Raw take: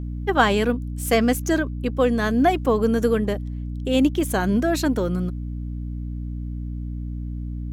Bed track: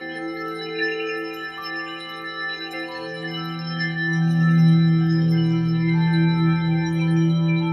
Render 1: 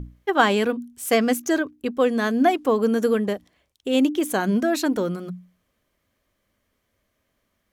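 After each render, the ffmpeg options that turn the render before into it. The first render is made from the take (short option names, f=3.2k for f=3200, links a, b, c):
-af "bandreject=f=60:t=h:w=6,bandreject=f=120:t=h:w=6,bandreject=f=180:t=h:w=6,bandreject=f=240:t=h:w=6,bandreject=f=300:t=h:w=6"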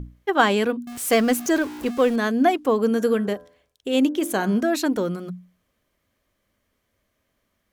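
-filter_complex "[0:a]asettb=1/sr,asplit=3[a][b][c];[a]atrim=end=0.874[d];[b]atrim=start=0.87:end=2.16,asetpts=PTS-STARTPTS,afade=t=in:d=0.004:c=qsin,afade=t=out:st=1.286:d=0.004:c=qsin,aeval=exprs='val(0)+0.5*0.0299*sgn(val(0))':c=same[e];[c]atrim=start=2.156[f];[d][e]acrossfade=d=0.004:c1=hsin:c2=qsin[g];[g][f]acrossfade=d=0.004:c1=qsin:c2=hsin,asettb=1/sr,asplit=3[h][i][j];[h]atrim=end=2.894[k];[i]atrim=start=2.89:end=4.61,asetpts=PTS-STARTPTS,afade=t=in:d=0.004:c=qsin,afade=t=out:st=1.716:d=0.004:c=qsin,bandreject=f=84.39:t=h:w=4,bandreject=f=168.78:t=h:w=4,bandreject=f=253.17:t=h:w=4,bandreject=f=337.56:t=h:w=4,bandreject=f=421.95:t=h:w=4,bandreject=f=506.34:t=h:w=4,bandreject=f=590.73:t=h:w=4,bandreject=f=675.12:t=h:w=4,bandreject=f=759.51:t=h:w=4,bandreject=f=843.9:t=h:w=4,bandreject=f=928.29:t=h:w=4,bandreject=f=1.01268k:t=h:w=4,bandreject=f=1.09707k:t=h:w=4,bandreject=f=1.18146k:t=h:w=4,bandreject=f=1.26585k:t=h:w=4,bandreject=f=1.35024k:t=h:w=4,bandreject=f=1.43463k:t=h:w=4,bandreject=f=1.51902k:t=h:w=4,bandreject=f=1.60341k:t=h:w=4,bandreject=f=1.6878k:t=h:w=4[l];[j]atrim=start=4.606[m];[k][l]acrossfade=d=0.004:c1=hsin:c2=qsin[n];[n][m]acrossfade=d=0.004:c1=qsin:c2=hsin"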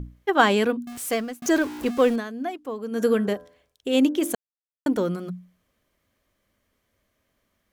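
-filter_complex "[0:a]asplit=6[a][b][c][d][e][f];[a]atrim=end=1.42,asetpts=PTS-STARTPTS,afade=t=out:st=0.82:d=0.6[g];[b]atrim=start=1.42:end=2.24,asetpts=PTS-STARTPTS,afade=t=in:d=0.004:c=hsin,afade=t=out:st=0.7:d=0.12:silence=0.251189[h];[c]atrim=start=2.24:end=2.91,asetpts=PTS-STARTPTS,volume=-12dB[i];[d]atrim=start=2.91:end=4.35,asetpts=PTS-STARTPTS,afade=t=in:d=0.12:silence=0.251189,afade=t=out:st=1.436:d=0.004:c=hsin[j];[e]atrim=start=4.35:end=4.86,asetpts=PTS-STARTPTS,volume=0[k];[f]atrim=start=4.86,asetpts=PTS-STARTPTS,afade=t=in:d=0.004:c=hsin[l];[g][h][i][j][k][l]concat=n=6:v=0:a=1"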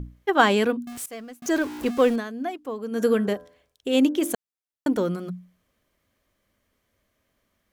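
-filter_complex "[0:a]asplit=2[a][b];[a]atrim=end=1.06,asetpts=PTS-STARTPTS,afade=t=out:st=1.056:d=0.004:c=hsin:silence=0.112202[c];[b]atrim=start=1.06,asetpts=PTS-STARTPTS,afade=t=in:d=0.68:silence=0.112202[d];[c][d]concat=n=2:v=0:a=1"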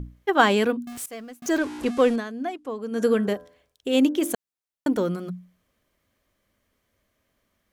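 -filter_complex "[0:a]asplit=3[a][b][c];[a]afade=t=out:st=1.57:d=0.02[d];[b]lowpass=f=11k:w=0.5412,lowpass=f=11k:w=1.3066,afade=t=in:st=1.57:d=0.02,afade=t=out:st=3.21:d=0.02[e];[c]afade=t=in:st=3.21:d=0.02[f];[d][e][f]amix=inputs=3:normalize=0"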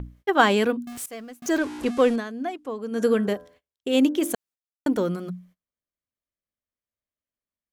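-af "agate=range=-26dB:threshold=-51dB:ratio=16:detection=peak"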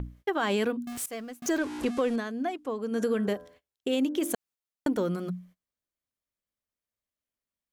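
-af "alimiter=limit=-13.5dB:level=0:latency=1:release=104,acompressor=threshold=-27dB:ratio=2"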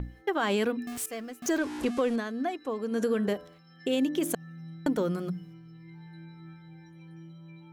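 -filter_complex "[1:a]volume=-28.5dB[a];[0:a][a]amix=inputs=2:normalize=0"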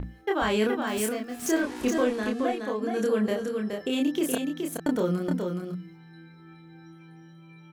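-filter_complex "[0:a]asplit=2[a][b];[b]adelay=28,volume=-2.5dB[c];[a][c]amix=inputs=2:normalize=0,aecho=1:1:421:0.562"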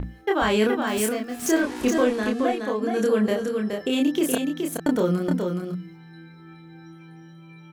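-af "volume=4dB"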